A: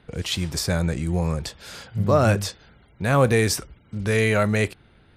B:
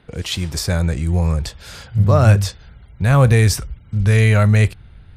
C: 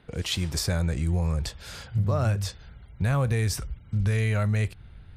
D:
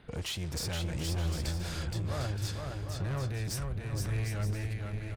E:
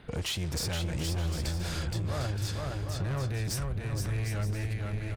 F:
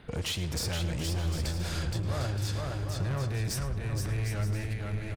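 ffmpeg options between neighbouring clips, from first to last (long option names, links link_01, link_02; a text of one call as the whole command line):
ffmpeg -i in.wav -af "asubboost=boost=7:cutoff=120,volume=2.5dB" out.wav
ffmpeg -i in.wav -af "acompressor=threshold=-17dB:ratio=5,volume=-4.5dB" out.wav
ffmpeg -i in.wav -af "alimiter=limit=-21dB:level=0:latency=1:release=339,asoftclip=type=tanh:threshold=-31.5dB,aecho=1:1:470|752|921.2|1023|1084:0.631|0.398|0.251|0.158|0.1" out.wav
ffmpeg -i in.wav -af "acompressor=threshold=-34dB:ratio=2.5,volume=4.5dB" out.wav
ffmpeg -i in.wav -filter_complex "[0:a]asplit=2[link_01][link_02];[link_02]adelay=107,lowpass=frequency=4700:poles=1,volume=-12dB,asplit=2[link_03][link_04];[link_04]adelay=107,lowpass=frequency=4700:poles=1,volume=0.39,asplit=2[link_05][link_06];[link_06]adelay=107,lowpass=frequency=4700:poles=1,volume=0.39,asplit=2[link_07][link_08];[link_08]adelay=107,lowpass=frequency=4700:poles=1,volume=0.39[link_09];[link_01][link_03][link_05][link_07][link_09]amix=inputs=5:normalize=0" out.wav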